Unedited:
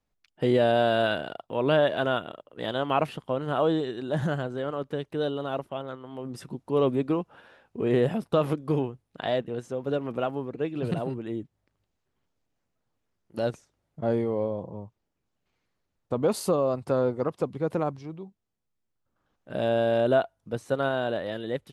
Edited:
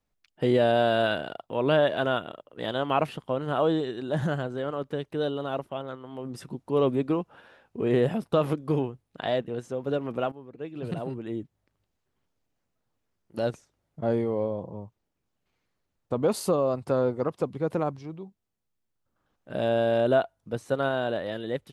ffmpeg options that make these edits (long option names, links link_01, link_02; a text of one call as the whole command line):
ffmpeg -i in.wav -filter_complex "[0:a]asplit=2[link_01][link_02];[link_01]atrim=end=10.32,asetpts=PTS-STARTPTS,afade=type=out:start_time=10.316:duration=0.004:curve=hsin:silence=0.16788[link_03];[link_02]atrim=start=10.32,asetpts=PTS-STARTPTS,afade=type=in:duration=1.05:silence=0.16788[link_04];[link_03][link_04]concat=n=2:v=0:a=1" out.wav